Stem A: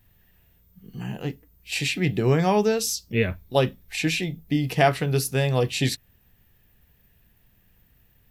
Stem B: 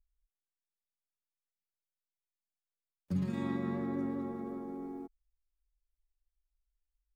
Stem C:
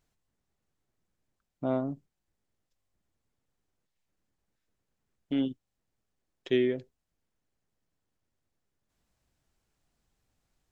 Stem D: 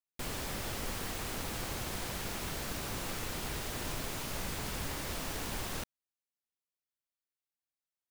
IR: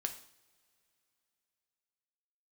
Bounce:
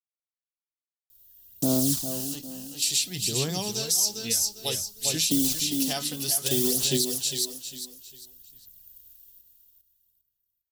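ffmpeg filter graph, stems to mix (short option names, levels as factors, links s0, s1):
-filter_complex "[0:a]dynaudnorm=f=120:g=5:m=1.5,adelay=1100,volume=0.126,asplit=2[s0][s1];[s1]volume=0.562[s2];[1:a]adelay=2500,volume=0.126[s3];[2:a]equalizer=f=290:w=0.6:g=11.5,acrossover=split=160[s4][s5];[s5]acompressor=threshold=0.00562:ratio=1.5[s6];[s4][s6]amix=inputs=2:normalize=0,acrusher=bits=7:mix=0:aa=0.000001,volume=1.26,asplit=3[s7][s8][s9];[s8]volume=0.376[s10];[3:a]adelay=1550,volume=0.188,asplit=2[s11][s12];[s12]volume=0.0841[s13];[s9]apad=whole_len=425711[s14];[s11][s14]sidechaingate=range=0.0224:threshold=0.0112:ratio=16:detection=peak[s15];[s2][s10][s13]amix=inputs=3:normalize=0,aecho=0:1:402|804|1206|1608:1|0.3|0.09|0.027[s16];[s0][s3][s7][s15][s16]amix=inputs=5:normalize=0,aphaser=in_gain=1:out_gain=1:delay=4:decay=0.41:speed=0.58:type=sinusoidal,aexciter=amount=7.2:drive=9.4:freq=3400,alimiter=limit=0.211:level=0:latency=1:release=75"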